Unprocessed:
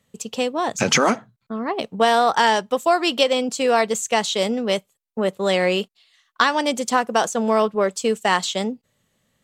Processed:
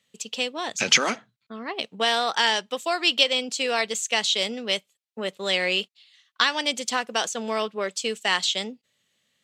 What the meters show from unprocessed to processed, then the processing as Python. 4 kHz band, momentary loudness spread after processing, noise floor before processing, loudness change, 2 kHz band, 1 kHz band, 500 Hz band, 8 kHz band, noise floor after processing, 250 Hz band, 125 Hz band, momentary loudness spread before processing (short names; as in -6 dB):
+2.5 dB, 13 LU, -72 dBFS, -3.5 dB, -1.0 dB, -8.5 dB, -9.0 dB, -1.5 dB, -76 dBFS, -10.0 dB, n/a, 9 LU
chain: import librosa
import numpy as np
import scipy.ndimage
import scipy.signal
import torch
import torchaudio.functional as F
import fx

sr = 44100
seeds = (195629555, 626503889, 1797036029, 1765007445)

y = fx.weighting(x, sr, curve='D')
y = F.gain(torch.from_numpy(y), -8.5).numpy()